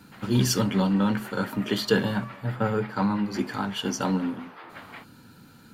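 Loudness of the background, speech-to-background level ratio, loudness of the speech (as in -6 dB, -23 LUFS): -44.0 LUFS, 17.5 dB, -26.5 LUFS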